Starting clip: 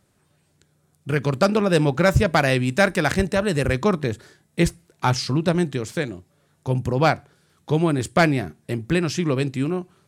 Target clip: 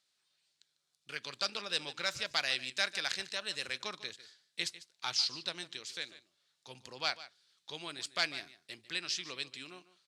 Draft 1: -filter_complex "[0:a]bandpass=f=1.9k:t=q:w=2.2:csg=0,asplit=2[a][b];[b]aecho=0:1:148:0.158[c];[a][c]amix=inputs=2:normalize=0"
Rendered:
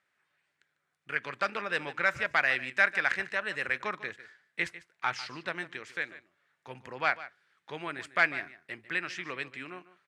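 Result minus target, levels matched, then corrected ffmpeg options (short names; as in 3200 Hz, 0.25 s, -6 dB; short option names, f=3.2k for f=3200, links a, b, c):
4000 Hz band -13.0 dB
-filter_complex "[0:a]bandpass=f=4.2k:t=q:w=2.2:csg=0,asplit=2[a][b];[b]aecho=0:1:148:0.158[c];[a][c]amix=inputs=2:normalize=0"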